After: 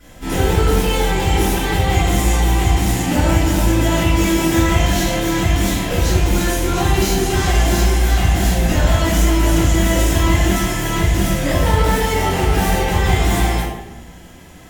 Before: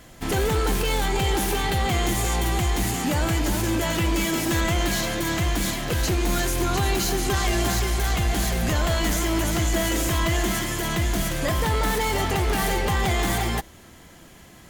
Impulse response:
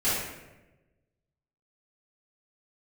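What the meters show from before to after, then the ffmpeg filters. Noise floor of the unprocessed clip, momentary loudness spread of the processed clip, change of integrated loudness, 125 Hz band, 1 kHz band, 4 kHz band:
−48 dBFS, 3 LU, +7.0 dB, +8.5 dB, +6.0 dB, +4.0 dB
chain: -filter_complex "[1:a]atrim=start_sample=2205,asetrate=52920,aresample=44100[link_01];[0:a][link_01]afir=irnorm=-1:irlink=0,volume=-5dB"

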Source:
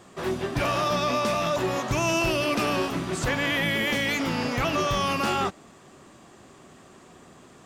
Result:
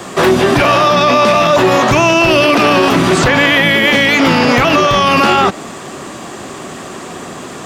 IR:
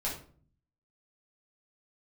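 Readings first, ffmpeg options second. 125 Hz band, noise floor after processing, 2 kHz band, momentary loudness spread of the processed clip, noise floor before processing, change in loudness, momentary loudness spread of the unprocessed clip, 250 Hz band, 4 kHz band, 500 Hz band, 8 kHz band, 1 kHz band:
+12.5 dB, −28 dBFS, +16.0 dB, 19 LU, −51 dBFS, +15.5 dB, 4 LU, +15.5 dB, +15.0 dB, +16.0 dB, +11.5 dB, +16.0 dB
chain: -filter_complex "[0:a]lowshelf=frequency=110:gain=-10.5,acrossover=split=240|770|4900[link_01][link_02][link_03][link_04];[link_04]acompressor=threshold=-49dB:ratio=6[link_05];[link_01][link_02][link_03][link_05]amix=inputs=4:normalize=0,alimiter=level_in=25dB:limit=-1dB:release=50:level=0:latency=1,volume=-1dB"

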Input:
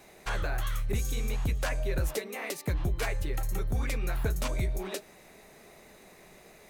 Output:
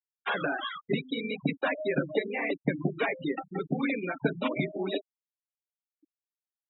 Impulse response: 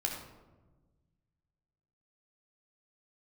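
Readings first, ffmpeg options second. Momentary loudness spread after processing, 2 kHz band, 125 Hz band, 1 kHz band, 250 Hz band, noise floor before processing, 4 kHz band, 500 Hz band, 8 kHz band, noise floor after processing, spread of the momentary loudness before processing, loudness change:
4 LU, +5.0 dB, −5.0 dB, +4.5 dB, +9.0 dB, −55 dBFS, +2.5 dB, +6.0 dB, below −40 dB, below −85 dBFS, 4 LU, +1.5 dB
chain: -filter_complex "[0:a]acrossover=split=250|1300[link_01][link_02][link_03];[link_03]asoftclip=type=hard:threshold=-37.5dB[link_04];[link_01][link_02][link_04]amix=inputs=3:normalize=0,aemphasis=mode=production:type=75fm,afftfilt=real='re*between(b*sr/4096,130,3900)':imag='im*between(b*sr/4096,130,3900)':win_size=4096:overlap=0.75,equalizer=frequency=280:width=7.5:gain=12.5,afftfilt=real='re*gte(hypot(re,im),0.0251)':imag='im*gte(hypot(re,im),0.0251)':win_size=1024:overlap=0.75,volume=6.5dB"

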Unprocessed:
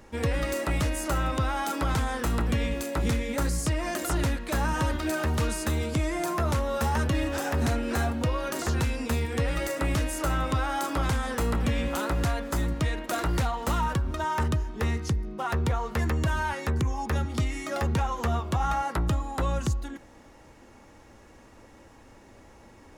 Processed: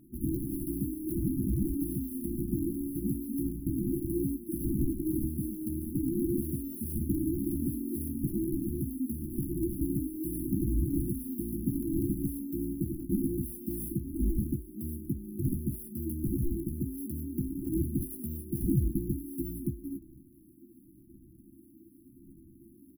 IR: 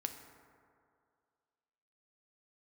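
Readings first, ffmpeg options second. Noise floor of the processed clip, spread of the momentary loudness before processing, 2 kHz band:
−57 dBFS, 3 LU, below −40 dB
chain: -filter_complex "[0:a]highpass=76,acrossover=split=190 3600:gain=0.178 1 0.2[link_01][link_02][link_03];[link_01][link_02][link_03]amix=inputs=3:normalize=0,acrusher=samples=28:mix=1:aa=0.000001:lfo=1:lforange=44.8:lforate=0.86,afftfilt=real='re*(1-between(b*sr/4096,370,9800))':imag='im*(1-between(b*sr/4096,370,9800))':win_size=4096:overlap=0.75,asplit=2[link_04][link_05];[link_05]adelay=15,volume=-6dB[link_06];[link_04][link_06]amix=inputs=2:normalize=0,volume=2dB"

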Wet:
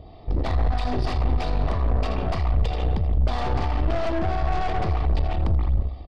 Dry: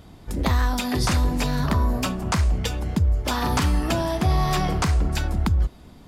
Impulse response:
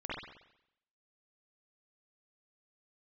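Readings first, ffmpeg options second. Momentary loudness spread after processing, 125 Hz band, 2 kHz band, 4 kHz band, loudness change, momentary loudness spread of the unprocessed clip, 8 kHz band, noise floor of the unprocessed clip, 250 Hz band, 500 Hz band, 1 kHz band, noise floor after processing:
2 LU, −1.5 dB, −6.0 dB, −8.5 dB, −2.0 dB, 4 LU, −20.5 dB, −47 dBFS, −6.0 dB, +0.5 dB, −1.5 dB, −40 dBFS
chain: -filter_complex "[0:a]aecho=1:1:2.6:0.41,asplit=2[link_01][link_02];[1:a]atrim=start_sample=2205,adelay=80[link_03];[link_02][link_03]afir=irnorm=-1:irlink=0,volume=-5.5dB[link_04];[link_01][link_04]amix=inputs=2:normalize=0,alimiter=limit=-15.5dB:level=0:latency=1:release=54,asuperstop=centerf=1500:order=12:qfactor=4.7,acrossover=split=730[link_05][link_06];[link_05]aeval=exprs='val(0)*(1-0.5/2+0.5/2*cos(2*PI*3.1*n/s))':channel_layout=same[link_07];[link_06]aeval=exprs='val(0)*(1-0.5/2-0.5/2*cos(2*PI*3.1*n/s))':channel_layout=same[link_08];[link_07][link_08]amix=inputs=2:normalize=0,aresample=11025,aresample=44100,equalizer=frequency=630:width=1.9:gain=13.5,aeval=exprs='(tanh(15.8*val(0)+0.6)-tanh(0.6))/15.8':channel_layout=same,lowshelf=frequency=160:gain=9"

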